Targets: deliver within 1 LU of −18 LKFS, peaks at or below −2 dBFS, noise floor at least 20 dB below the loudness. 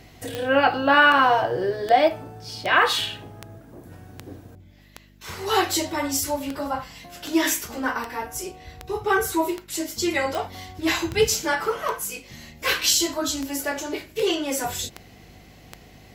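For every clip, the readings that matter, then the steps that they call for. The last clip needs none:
number of clicks 21; mains hum 50 Hz; hum harmonics up to 250 Hz; level of the hum −51 dBFS; integrated loudness −23.0 LKFS; sample peak −5.0 dBFS; target loudness −18.0 LKFS
→ click removal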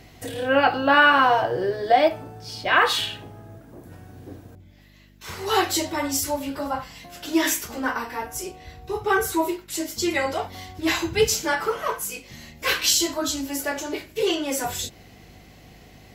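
number of clicks 0; mains hum 50 Hz; hum harmonics up to 250 Hz; level of the hum −51 dBFS
→ hum removal 50 Hz, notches 5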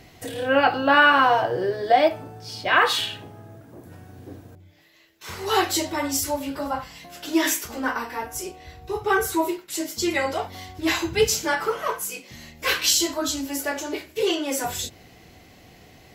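mains hum none found; integrated loudness −23.0 LKFS; sample peak −5.0 dBFS; target loudness −18.0 LKFS
→ level +5 dB
brickwall limiter −2 dBFS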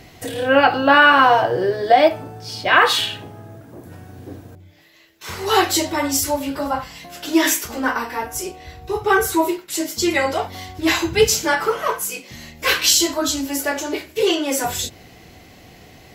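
integrated loudness −18.0 LKFS; sample peak −2.0 dBFS; background noise floor −46 dBFS

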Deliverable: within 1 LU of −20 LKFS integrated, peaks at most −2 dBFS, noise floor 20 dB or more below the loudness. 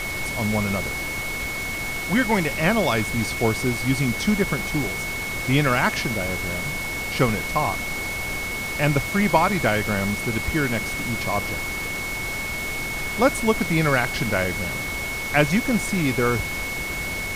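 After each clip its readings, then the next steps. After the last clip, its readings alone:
interfering tone 2,200 Hz; level of the tone −28 dBFS; background noise floor −29 dBFS; target noise floor −43 dBFS; integrated loudness −23.0 LKFS; sample peak −4.5 dBFS; target loudness −20.0 LKFS
→ notch filter 2,200 Hz, Q 30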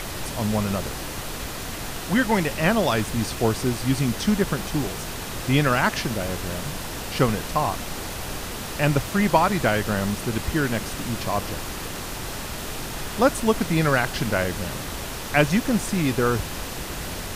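interfering tone none found; background noise floor −33 dBFS; target noise floor −45 dBFS
→ noise reduction from a noise print 12 dB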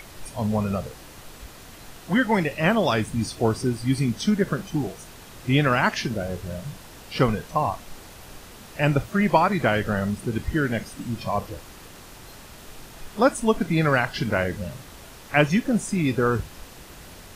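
background noise floor −45 dBFS; integrated loudness −24.0 LKFS; sample peak −5.0 dBFS; target loudness −20.0 LKFS
→ level +4 dB
brickwall limiter −2 dBFS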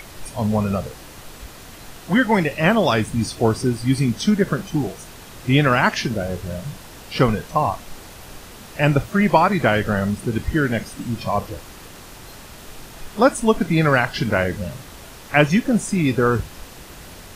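integrated loudness −20.0 LKFS; sample peak −2.0 dBFS; background noise floor −41 dBFS

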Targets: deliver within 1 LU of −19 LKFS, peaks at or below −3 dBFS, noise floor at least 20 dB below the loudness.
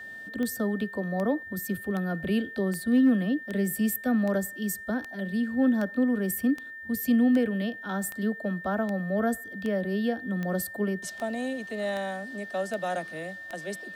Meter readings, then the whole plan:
number of clicks 18; interfering tone 1,800 Hz; level of the tone −39 dBFS; integrated loudness −28.5 LKFS; sample peak −13.0 dBFS; target loudness −19.0 LKFS
→ click removal
notch filter 1,800 Hz, Q 30
level +9.5 dB

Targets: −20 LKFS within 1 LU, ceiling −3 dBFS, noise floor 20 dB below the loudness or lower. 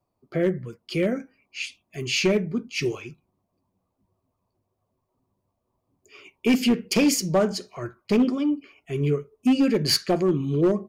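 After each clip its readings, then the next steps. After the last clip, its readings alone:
share of clipped samples 1.1%; peaks flattened at −14.0 dBFS; integrated loudness −24.0 LKFS; sample peak −14.0 dBFS; target loudness −20.0 LKFS
→ clipped peaks rebuilt −14 dBFS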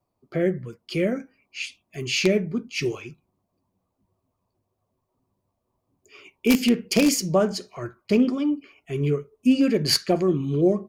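share of clipped samples 0.0%; integrated loudness −23.5 LKFS; sample peak −5.0 dBFS; target loudness −20.0 LKFS
→ level +3.5 dB
brickwall limiter −3 dBFS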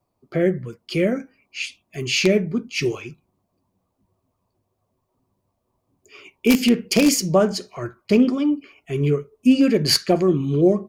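integrated loudness −20.0 LKFS; sample peak −3.0 dBFS; background noise floor −74 dBFS

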